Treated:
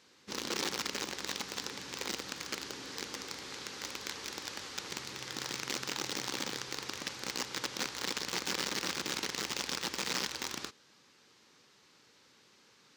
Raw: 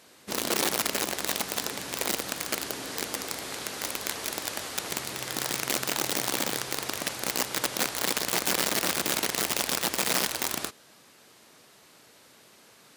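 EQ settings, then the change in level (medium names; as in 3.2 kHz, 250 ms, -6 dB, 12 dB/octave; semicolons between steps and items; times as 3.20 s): peaking EQ 660 Hz -13 dB 0.24 oct; resonant high shelf 7.8 kHz -10.5 dB, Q 1.5; -7.5 dB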